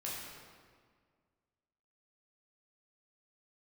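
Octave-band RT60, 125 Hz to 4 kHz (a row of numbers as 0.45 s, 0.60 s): 2.1 s, 2.1 s, 1.9 s, 1.8 s, 1.5 s, 1.2 s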